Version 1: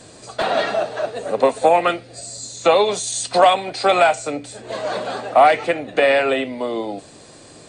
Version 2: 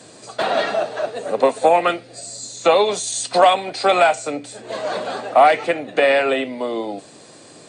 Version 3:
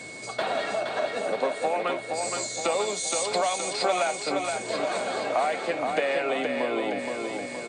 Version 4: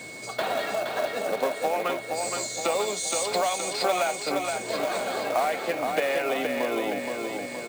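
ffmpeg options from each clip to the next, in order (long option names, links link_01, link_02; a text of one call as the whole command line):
ffmpeg -i in.wav -af "highpass=140" out.wav
ffmpeg -i in.wav -af "acompressor=threshold=-28dB:ratio=3,aecho=1:1:470|940|1410|1880|2350|2820|3290|3760:0.596|0.334|0.187|0.105|0.0586|0.0328|0.0184|0.0103,aeval=exprs='val(0)+0.01*sin(2*PI*2200*n/s)':channel_layout=same" out.wav
ffmpeg -i in.wav -af "acrusher=bits=4:mode=log:mix=0:aa=0.000001" out.wav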